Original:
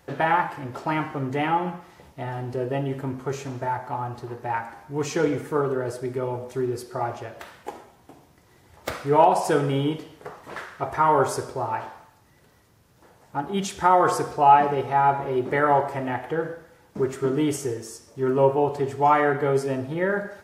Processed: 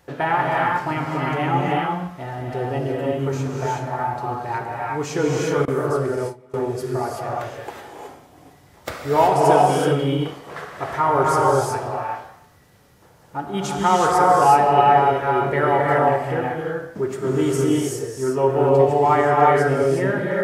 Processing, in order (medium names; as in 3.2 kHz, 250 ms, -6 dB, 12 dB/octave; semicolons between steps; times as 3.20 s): gated-style reverb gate 400 ms rising, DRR -2.5 dB; 5.65–6.54 s: gate with hold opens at -14 dBFS